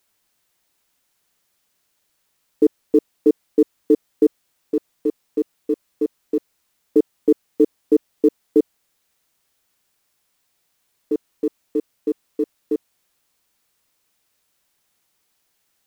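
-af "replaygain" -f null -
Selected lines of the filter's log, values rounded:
track_gain = +1.3 dB
track_peak = 0.392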